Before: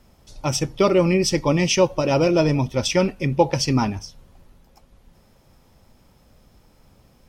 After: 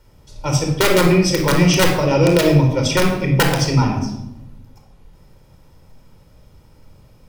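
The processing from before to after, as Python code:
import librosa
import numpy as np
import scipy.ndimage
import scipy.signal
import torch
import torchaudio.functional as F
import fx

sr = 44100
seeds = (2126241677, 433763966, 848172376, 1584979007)

y = (np.mod(10.0 ** (8.5 / 20.0) * x + 1.0, 2.0) - 1.0) / 10.0 ** (8.5 / 20.0)
y = fx.room_shoebox(y, sr, seeds[0], volume_m3=3100.0, walls='furnished', distance_m=4.6)
y = F.gain(torch.from_numpy(y), -1.5).numpy()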